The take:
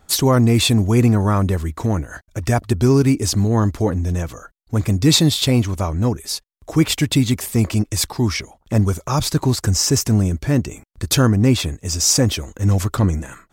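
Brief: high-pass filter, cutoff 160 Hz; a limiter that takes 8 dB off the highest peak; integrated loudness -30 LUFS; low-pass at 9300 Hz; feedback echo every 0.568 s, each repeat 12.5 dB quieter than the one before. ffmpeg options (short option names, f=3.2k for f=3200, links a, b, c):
-af "highpass=160,lowpass=9.3k,alimiter=limit=-10dB:level=0:latency=1,aecho=1:1:568|1136|1704:0.237|0.0569|0.0137,volume=-8dB"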